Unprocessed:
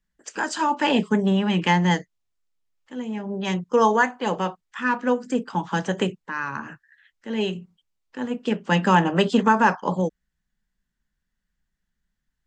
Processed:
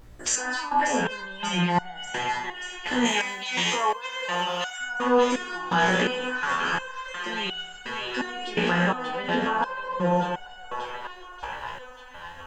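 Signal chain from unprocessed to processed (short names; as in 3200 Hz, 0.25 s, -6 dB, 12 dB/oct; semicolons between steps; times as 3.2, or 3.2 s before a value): spectral trails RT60 0.78 s; low shelf 430 Hz -11 dB; treble ducked by the level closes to 1200 Hz, closed at -17 dBFS; compressor 4:1, threshold -36 dBFS, peak gain reduction 17 dB; added noise brown -63 dBFS; 3.05–4.79 tilt +3.5 dB/oct; thinning echo 0.586 s, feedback 73%, high-pass 540 Hz, level -8 dB; maximiser +30 dB; stepped resonator 2.8 Hz 60–740 Hz; gain -5 dB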